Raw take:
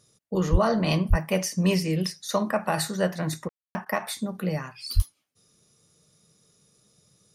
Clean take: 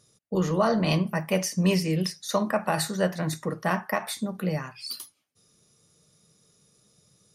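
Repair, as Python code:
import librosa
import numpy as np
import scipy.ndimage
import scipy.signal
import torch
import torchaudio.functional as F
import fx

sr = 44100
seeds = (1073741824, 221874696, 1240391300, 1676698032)

y = fx.highpass(x, sr, hz=140.0, slope=24, at=(0.51, 0.63), fade=0.02)
y = fx.highpass(y, sr, hz=140.0, slope=24, at=(1.09, 1.21), fade=0.02)
y = fx.highpass(y, sr, hz=140.0, slope=24, at=(4.95, 5.07), fade=0.02)
y = fx.fix_ambience(y, sr, seeds[0], print_start_s=5.1, print_end_s=5.6, start_s=3.49, end_s=3.75)
y = fx.fix_interpolate(y, sr, at_s=(3.48, 3.85), length_ms=10.0)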